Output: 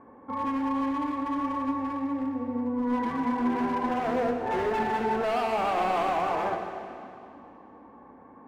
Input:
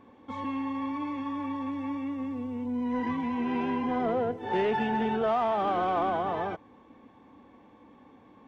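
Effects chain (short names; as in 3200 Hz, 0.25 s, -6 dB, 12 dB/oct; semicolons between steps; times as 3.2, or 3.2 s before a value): LPF 1600 Hz 24 dB/oct; low shelf 280 Hz -7 dB; notches 50/100/150/200/250/300/350/400/450/500 Hz; in parallel at +0.5 dB: limiter -27.5 dBFS, peak gain reduction 7.5 dB; on the sum: hard clip -25.5 dBFS, distortion -12 dB; on a send at -4 dB: reverb RT60 2.6 s, pre-delay 16 ms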